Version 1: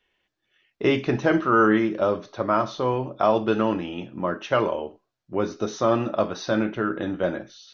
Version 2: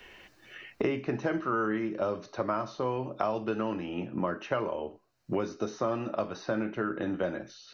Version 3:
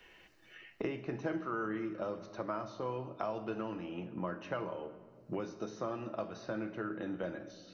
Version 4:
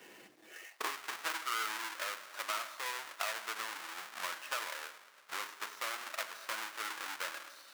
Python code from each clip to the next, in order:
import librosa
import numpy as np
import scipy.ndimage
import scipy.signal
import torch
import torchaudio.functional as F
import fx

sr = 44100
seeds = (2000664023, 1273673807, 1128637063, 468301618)

y1 = fx.notch(x, sr, hz=3400.0, q=6.2)
y1 = fx.band_squash(y1, sr, depth_pct=100)
y1 = y1 * 10.0 ** (-9.0 / 20.0)
y2 = fx.room_shoebox(y1, sr, seeds[0], volume_m3=2800.0, walls='mixed', distance_m=0.67)
y2 = y2 * 10.0 ** (-8.0 / 20.0)
y3 = fx.halfwave_hold(y2, sr)
y3 = fx.filter_sweep_highpass(y3, sr, from_hz=230.0, to_hz=1300.0, start_s=0.32, end_s=0.95, q=1.3)